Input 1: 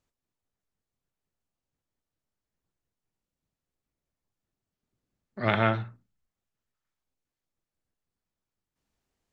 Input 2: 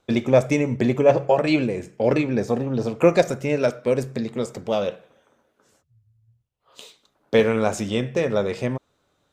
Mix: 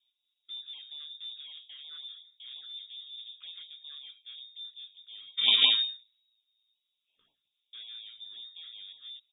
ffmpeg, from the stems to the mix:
ffmpeg -i stem1.wav -i stem2.wav -filter_complex "[0:a]acrusher=samples=21:mix=1:aa=0.000001,asplit=2[link_01][link_02];[link_02]adelay=5.1,afreqshift=-0.49[link_03];[link_01][link_03]amix=inputs=2:normalize=1,volume=2.5dB,asplit=2[link_04][link_05];[1:a]flanger=delay=16:depth=5.4:speed=1,aeval=exprs='(tanh(20*val(0)+0.15)-tanh(0.15))/20':channel_layout=same,adelay=400,volume=-15dB[link_06];[link_05]apad=whole_len=428985[link_07];[link_06][link_07]sidechaingate=range=-8dB:threshold=-53dB:ratio=16:detection=peak[link_08];[link_04][link_08]amix=inputs=2:normalize=0,equalizer=frequency=210:width_type=o:width=1.8:gain=12,lowpass=frequency=3200:width_type=q:width=0.5098,lowpass=frequency=3200:width_type=q:width=0.6013,lowpass=frequency=3200:width_type=q:width=0.9,lowpass=frequency=3200:width_type=q:width=2.563,afreqshift=-3800,afftfilt=real='re*(1-between(b*sr/1024,650*pow(1600/650,0.5+0.5*sin(2*PI*5.5*pts/sr))/1.41,650*pow(1600/650,0.5+0.5*sin(2*PI*5.5*pts/sr))*1.41))':imag='im*(1-between(b*sr/1024,650*pow(1600/650,0.5+0.5*sin(2*PI*5.5*pts/sr))/1.41,650*pow(1600/650,0.5+0.5*sin(2*PI*5.5*pts/sr))*1.41))':win_size=1024:overlap=0.75" out.wav

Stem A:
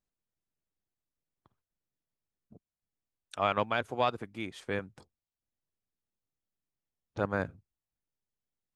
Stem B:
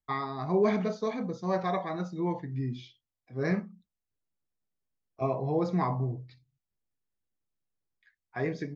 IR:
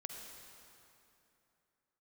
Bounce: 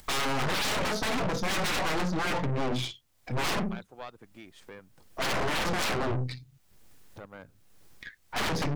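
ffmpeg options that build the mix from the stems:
-filter_complex "[0:a]volume=-9.5dB[link_01];[1:a]aeval=exprs='0.168*sin(PI/2*10*val(0)/0.168)':channel_layout=same,volume=-2.5dB[link_02];[link_01][link_02]amix=inputs=2:normalize=0,acompressor=mode=upward:threshold=-34dB:ratio=2.5,aeval=exprs='(tanh(25.1*val(0)+0.75)-tanh(0.75))/25.1':channel_layout=same"

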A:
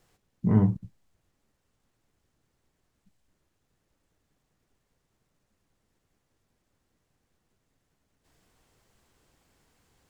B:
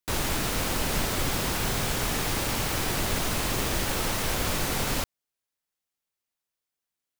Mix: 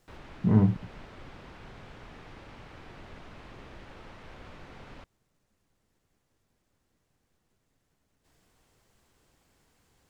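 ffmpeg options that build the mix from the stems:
ffmpeg -i stem1.wav -i stem2.wav -filter_complex "[0:a]volume=0dB[link_01];[1:a]lowpass=2600,volume=-18.5dB[link_02];[link_01][link_02]amix=inputs=2:normalize=0" out.wav

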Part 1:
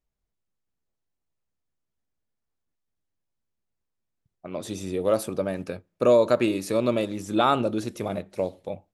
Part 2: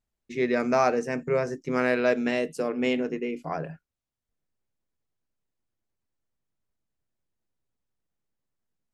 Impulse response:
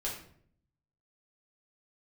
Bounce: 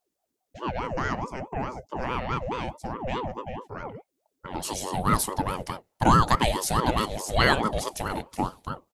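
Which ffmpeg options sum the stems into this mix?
-filter_complex "[0:a]highshelf=frequency=3400:gain=11.5,volume=2dB[link_01];[1:a]bass=frequency=250:gain=7,treble=frequency=4000:gain=0,adelay=250,volume=-4dB[link_02];[link_01][link_02]amix=inputs=2:normalize=0,aeval=exprs='val(0)*sin(2*PI*510*n/s+510*0.5/4.7*sin(2*PI*4.7*n/s))':channel_layout=same"

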